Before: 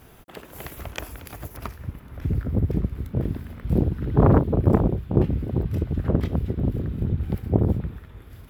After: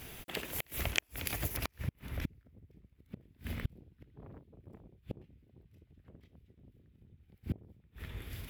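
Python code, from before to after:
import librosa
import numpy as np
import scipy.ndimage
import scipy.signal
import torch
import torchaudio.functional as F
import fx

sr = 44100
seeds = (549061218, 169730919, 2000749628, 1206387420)

y = fx.gate_flip(x, sr, shuts_db=-21.0, range_db=-35)
y = fx.high_shelf_res(y, sr, hz=1700.0, db=7.0, q=1.5)
y = y * 10.0 ** (-1.0 / 20.0)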